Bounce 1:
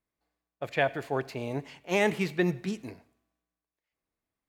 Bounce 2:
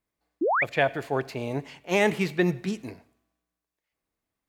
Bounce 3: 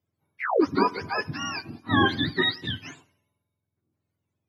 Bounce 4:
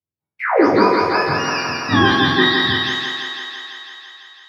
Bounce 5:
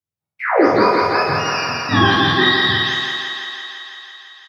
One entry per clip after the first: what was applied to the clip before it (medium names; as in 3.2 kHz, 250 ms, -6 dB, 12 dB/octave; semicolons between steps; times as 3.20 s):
painted sound rise, 0.41–0.64 s, 280–2600 Hz -26 dBFS; trim +3 dB
spectrum inverted on a logarithmic axis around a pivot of 820 Hz; trim +2.5 dB
spectral sustain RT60 0.62 s; gate with hold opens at -43 dBFS; thinning echo 167 ms, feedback 76%, high-pass 280 Hz, level -3 dB; trim +5 dB
doubling 48 ms -3 dB; trim -1 dB